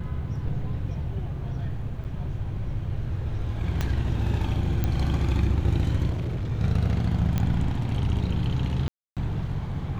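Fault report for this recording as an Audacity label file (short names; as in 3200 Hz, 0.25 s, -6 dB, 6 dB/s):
2.040000	2.050000	gap 8.6 ms
3.810000	3.810000	pop -13 dBFS
4.840000	4.840000	pop -13 dBFS
6.090000	6.520000	clipped -25.5 dBFS
7.380000	7.380000	pop -13 dBFS
8.880000	9.170000	gap 0.287 s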